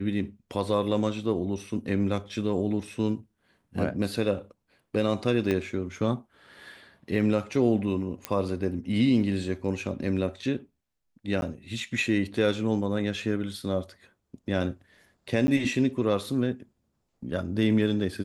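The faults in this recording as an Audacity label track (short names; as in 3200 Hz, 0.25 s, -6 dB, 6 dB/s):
5.510000	5.510000	pop -15 dBFS
8.250000	8.250000	pop -13 dBFS
11.410000	11.420000	gap
15.470000	15.480000	gap 10 ms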